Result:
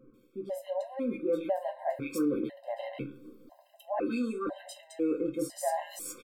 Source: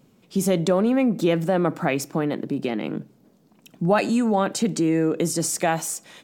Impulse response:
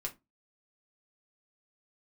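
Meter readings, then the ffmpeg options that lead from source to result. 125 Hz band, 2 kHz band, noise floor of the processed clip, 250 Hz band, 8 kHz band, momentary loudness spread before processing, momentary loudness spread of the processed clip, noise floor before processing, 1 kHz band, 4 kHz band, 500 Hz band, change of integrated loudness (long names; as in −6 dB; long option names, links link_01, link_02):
−22.0 dB, −15.5 dB, −62 dBFS, −11.5 dB, −15.5 dB, 8 LU, 13 LU, −59 dBFS, −10.0 dB, −16.0 dB, −9.5 dB, −11.0 dB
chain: -filter_complex "[0:a]areverse,acompressor=threshold=-33dB:ratio=20,areverse,equalizer=frequency=160:width_type=o:width=0.67:gain=-12,equalizer=frequency=630:width_type=o:width=0.67:gain=9,equalizer=frequency=6300:width_type=o:width=0.67:gain=-10[link_01];[1:a]atrim=start_sample=2205,asetrate=43659,aresample=44100[link_02];[link_01][link_02]afir=irnorm=-1:irlink=0,dynaudnorm=framelen=490:gausssize=3:maxgain=5dB,equalizer=frequency=300:width_type=o:width=0.26:gain=8,acrossover=split=1800[link_03][link_04];[link_04]adelay=140[link_05];[link_03][link_05]amix=inputs=2:normalize=0,afftfilt=real='re*gt(sin(2*PI*1*pts/sr)*(1-2*mod(floor(b*sr/1024/530),2)),0)':imag='im*gt(sin(2*PI*1*pts/sr)*(1-2*mod(floor(b*sr/1024/530),2)),0)':win_size=1024:overlap=0.75"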